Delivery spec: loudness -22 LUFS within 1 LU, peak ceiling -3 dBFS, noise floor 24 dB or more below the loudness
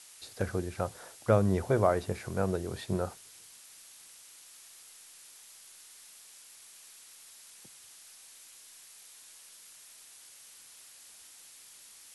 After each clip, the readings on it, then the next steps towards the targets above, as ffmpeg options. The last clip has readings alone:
noise floor -54 dBFS; noise floor target -55 dBFS; loudness -31.0 LUFS; peak -10.5 dBFS; loudness target -22.0 LUFS
-> -af "afftdn=nr=6:nf=-54"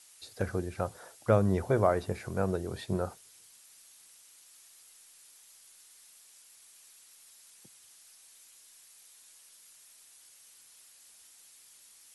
noise floor -58 dBFS; loudness -31.0 LUFS; peak -10.5 dBFS; loudness target -22.0 LUFS
-> -af "volume=9dB,alimiter=limit=-3dB:level=0:latency=1"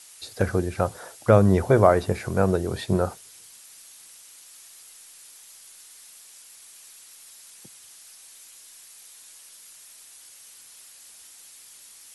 loudness -22.5 LUFS; peak -3.0 dBFS; noise floor -49 dBFS

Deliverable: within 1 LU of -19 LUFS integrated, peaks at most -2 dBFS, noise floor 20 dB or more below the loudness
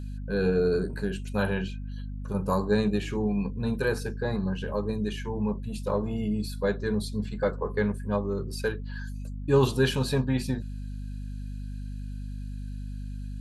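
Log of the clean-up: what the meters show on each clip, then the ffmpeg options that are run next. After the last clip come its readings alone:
hum 50 Hz; harmonics up to 250 Hz; hum level -33 dBFS; loudness -29.5 LUFS; peak -11.0 dBFS; loudness target -19.0 LUFS
-> -af "bandreject=f=50:t=h:w=6,bandreject=f=100:t=h:w=6,bandreject=f=150:t=h:w=6,bandreject=f=200:t=h:w=6,bandreject=f=250:t=h:w=6"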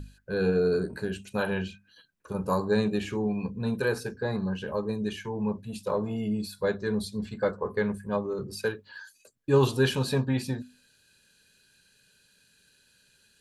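hum none; loudness -29.5 LUFS; peak -11.0 dBFS; loudness target -19.0 LUFS
-> -af "volume=10.5dB,alimiter=limit=-2dB:level=0:latency=1"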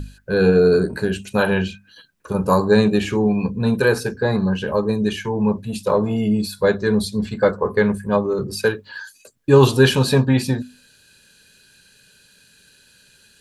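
loudness -19.0 LUFS; peak -2.0 dBFS; noise floor -54 dBFS

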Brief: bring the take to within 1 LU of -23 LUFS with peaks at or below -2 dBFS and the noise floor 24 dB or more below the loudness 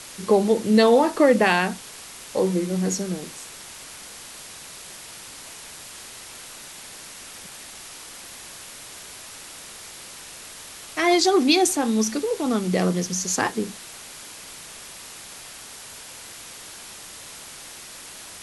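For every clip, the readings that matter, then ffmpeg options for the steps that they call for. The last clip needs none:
noise floor -41 dBFS; noise floor target -45 dBFS; loudness -21.0 LUFS; peak -4.5 dBFS; loudness target -23.0 LUFS
-> -af "afftdn=nr=6:nf=-41"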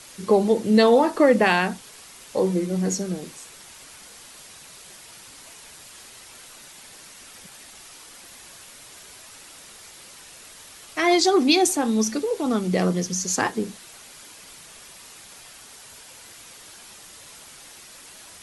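noise floor -46 dBFS; loudness -21.0 LUFS; peak -4.5 dBFS; loudness target -23.0 LUFS
-> -af "volume=-2dB"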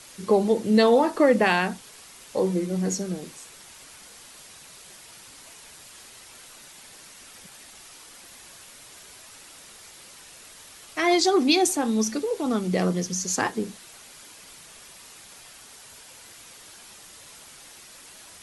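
loudness -23.0 LUFS; peak -6.5 dBFS; noise floor -48 dBFS

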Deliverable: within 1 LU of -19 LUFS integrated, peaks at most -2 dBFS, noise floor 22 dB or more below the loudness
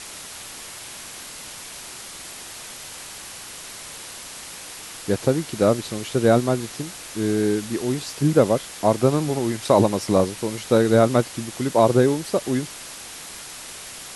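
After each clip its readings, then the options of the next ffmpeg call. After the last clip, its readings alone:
noise floor -38 dBFS; noise floor target -44 dBFS; loudness -21.5 LUFS; peak -2.5 dBFS; loudness target -19.0 LUFS
-> -af "afftdn=nr=6:nf=-38"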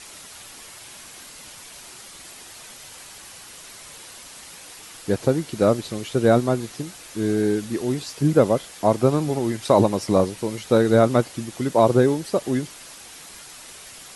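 noise floor -43 dBFS; noise floor target -44 dBFS
-> -af "afftdn=nr=6:nf=-43"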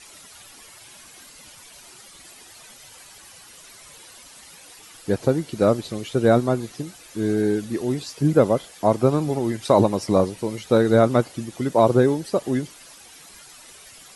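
noise floor -47 dBFS; loudness -21.0 LUFS; peak -2.5 dBFS; loudness target -19.0 LUFS
-> -af "volume=2dB,alimiter=limit=-2dB:level=0:latency=1"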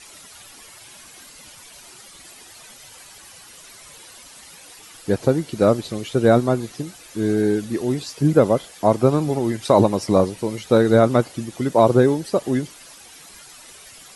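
loudness -19.5 LUFS; peak -2.0 dBFS; noise floor -45 dBFS

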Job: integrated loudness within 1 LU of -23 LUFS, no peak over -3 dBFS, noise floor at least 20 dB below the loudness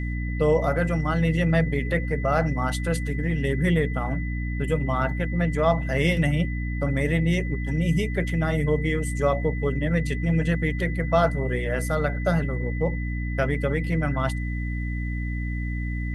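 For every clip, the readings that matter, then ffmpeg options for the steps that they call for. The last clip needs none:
hum 60 Hz; harmonics up to 300 Hz; hum level -26 dBFS; steady tone 2000 Hz; tone level -37 dBFS; loudness -25.0 LUFS; peak -7.0 dBFS; loudness target -23.0 LUFS
-> -af "bandreject=f=60:t=h:w=6,bandreject=f=120:t=h:w=6,bandreject=f=180:t=h:w=6,bandreject=f=240:t=h:w=6,bandreject=f=300:t=h:w=6"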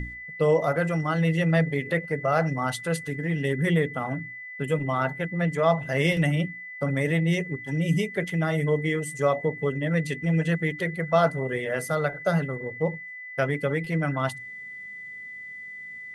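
hum none; steady tone 2000 Hz; tone level -37 dBFS
-> -af "bandreject=f=2k:w=30"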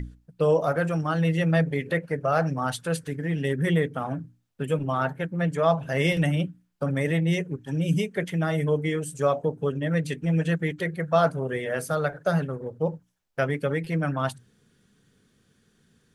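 steady tone none; loudness -26.0 LUFS; peak -9.0 dBFS; loudness target -23.0 LUFS
-> -af "volume=3dB"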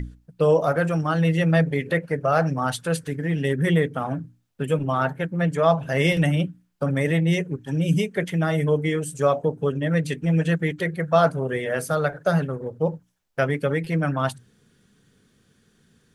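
loudness -23.0 LUFS; peak -6.0 dBFS; noise floor -64 dBFS

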